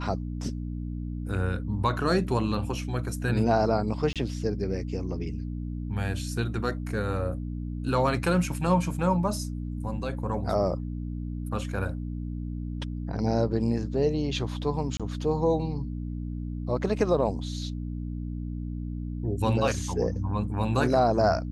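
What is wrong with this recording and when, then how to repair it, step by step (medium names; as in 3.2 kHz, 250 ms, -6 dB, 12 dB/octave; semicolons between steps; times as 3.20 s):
hum 60 Hz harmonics 5 -33 dBFS
4.13–4.16 s: dropout 27 ms
14.97–15.00 s: dropout 26 ms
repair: de-hum 60 Hz, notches 5; interpolate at 4.13 s, 27 ms; interpolate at 14.97 s, 26 ms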